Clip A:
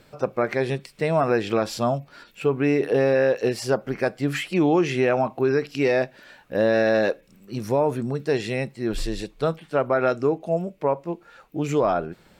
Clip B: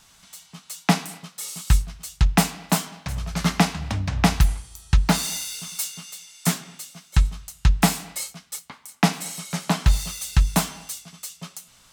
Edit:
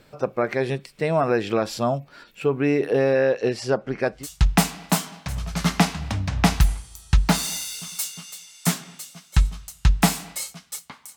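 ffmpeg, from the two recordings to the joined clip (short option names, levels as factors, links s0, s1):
-filter_complex "[0:a]asettb=1/sr,asplit=3[s0][s1][s2];[s0]atrim=end=3.214[s3];[s1]atrim=start=3.21:end=4.27,asetpts=PTS-STARTPTS,afade=t=in:d=0.004:c=qsin,afade=t=out:st=1.056:d=0.004:c=qsin,lowpass=7400[s4];[s2]atrim=start=4.266[s5];[s3][s4]acrossfade=d=0.004:c1=hsin:c2=qsin[s6];[s6][s5]acrossfade=d=0.004:c1=qsin:c2=hsin,apad=whole_dur=11.16,atrim=end=11.16,atrim=end=4.27,asetpts=PTS-STARTPTS[s7];[1:a]atrim=start=1.91:end=8.96,asetpts=PTS-STARTPTS[s8];[s7][s8]acrossfade=d=0.16:c1=tri:c2=tri"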